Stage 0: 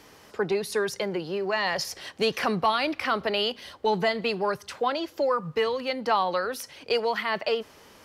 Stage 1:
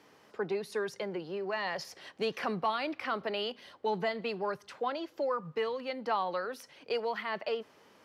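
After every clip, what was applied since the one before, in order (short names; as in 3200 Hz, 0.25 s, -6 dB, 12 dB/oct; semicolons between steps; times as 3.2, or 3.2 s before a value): HPF 140 Hz 12 dB/oct; high shelf 4600 Hz -9.5 dB; gain -7 dB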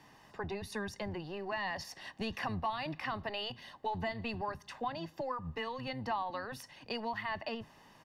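octaver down 1 oct, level -3 dB; comb 1.1 ms, depth 58%; compressor 2:1, threshold -37 dBFS, peak gain reduction 8 dB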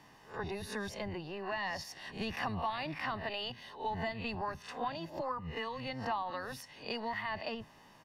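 spectral swells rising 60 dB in 0.34 s; gain -1 dB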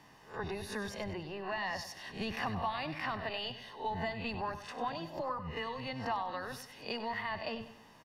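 feedback echo 97 ms, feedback 41%, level -12 dB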